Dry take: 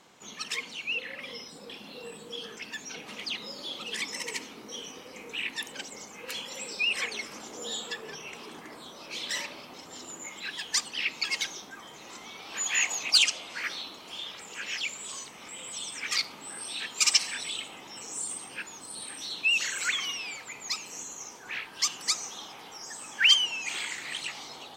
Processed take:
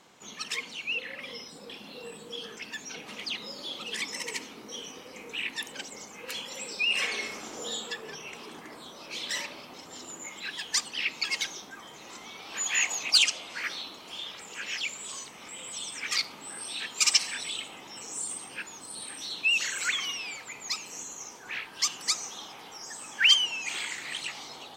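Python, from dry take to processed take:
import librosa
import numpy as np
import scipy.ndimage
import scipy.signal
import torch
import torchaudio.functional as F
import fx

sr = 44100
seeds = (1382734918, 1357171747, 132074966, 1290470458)

y = fx.reverb_throw(x, sr, start_s=6.84, length_s=0.81, rt60_s=0.87, drr_db=1.5)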